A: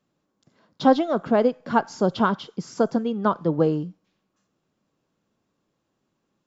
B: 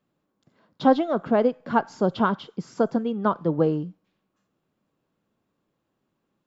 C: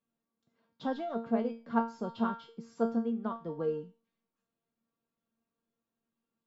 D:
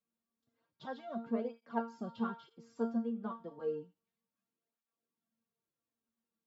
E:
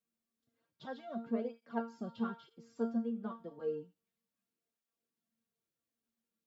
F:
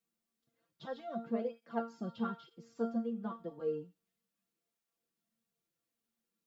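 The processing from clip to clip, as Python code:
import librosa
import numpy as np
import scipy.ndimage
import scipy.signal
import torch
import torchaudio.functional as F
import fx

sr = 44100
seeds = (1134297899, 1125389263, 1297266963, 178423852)

y1 = fx.peak_eq(x, sr, hz=6000.0, db=-7.5, octaves=1.0)
y1 = y1 * librosa.db_to_amplitude(-1.0)
y2 = fx.comb_fb(y1, sr, f0_hz=230.0, decay_s=0.34, harmonics='all', damping=0.0, mix_pct=90)
y3 = fx.flanger_cancel(y2, sr, hz=0.31, depth_ms=7.9)
y3 = y3 * librosa.db_to_amplitude(-3.0)
y4 = fx.peak_eq(y3, sr, hz=980.0, db=-5.0, octaves=0.65)
y5 = y4 + 0.49 * np.pad(y4, (int(5.9 * sr / 1000.0), 0))[:len(y4)]
y5 = y5 * librosa.db_to_amplitude(1.0)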